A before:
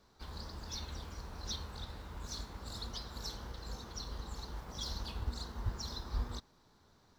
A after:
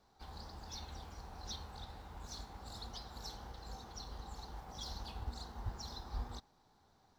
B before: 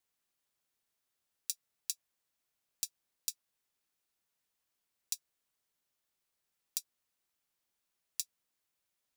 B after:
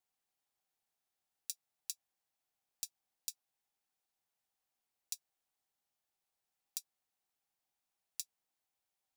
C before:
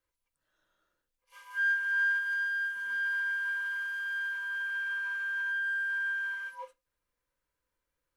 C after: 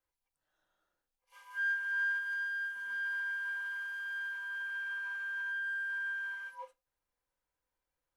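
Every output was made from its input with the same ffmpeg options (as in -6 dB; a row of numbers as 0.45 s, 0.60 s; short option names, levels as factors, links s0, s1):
-af "equalizer=f=780:w=4.7:g=11,volume=0.562"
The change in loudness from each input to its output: -4.5 LU, -5.0 LU, -4.5 LU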